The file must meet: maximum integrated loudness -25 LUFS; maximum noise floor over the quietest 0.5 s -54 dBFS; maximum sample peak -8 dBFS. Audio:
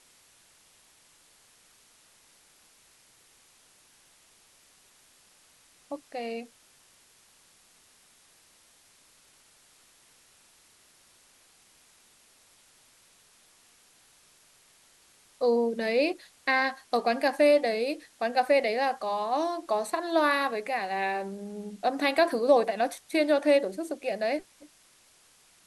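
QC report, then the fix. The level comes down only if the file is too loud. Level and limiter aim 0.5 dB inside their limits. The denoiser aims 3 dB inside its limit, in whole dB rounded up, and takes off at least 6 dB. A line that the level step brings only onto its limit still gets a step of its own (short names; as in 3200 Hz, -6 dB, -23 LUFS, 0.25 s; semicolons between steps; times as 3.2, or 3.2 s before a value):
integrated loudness -27.0 LUFS: OK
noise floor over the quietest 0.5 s -61 dBFS: OK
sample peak -10.5 dBFS: OK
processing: none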